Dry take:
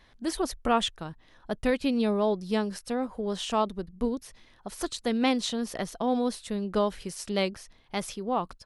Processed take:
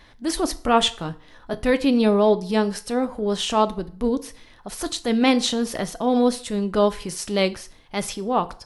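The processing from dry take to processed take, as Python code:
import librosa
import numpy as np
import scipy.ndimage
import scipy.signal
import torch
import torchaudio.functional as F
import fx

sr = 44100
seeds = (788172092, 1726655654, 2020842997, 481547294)

y = fx.doubler(x, sr, ms=17.0, db=-9, at=(0.79, 1.6))
y = fx.transient(y, sr, attack_db=-6, sustain_db=-1)
y = fx.rev_fdn(y, sr, rt60_s=0.49, lf_ratio=0.8, hf_ratio=0.85, size_ms=20.0, drr_db=11.0)
y = y * 10.0 ** (8.5 / 20.0)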